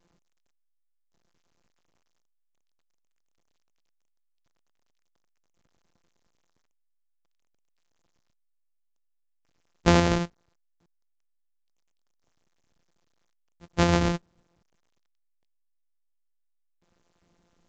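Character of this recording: a buzz of ramps at a fixed pitch in blocks of 256 samples; random-step tremolo 1.8 Hz, depth 65%; a quantiser's noise floor 12-bit, dither none; A-law

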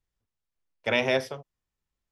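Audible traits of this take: noise floor -88 dBFS; spectral tilt -2.0 dB/oct

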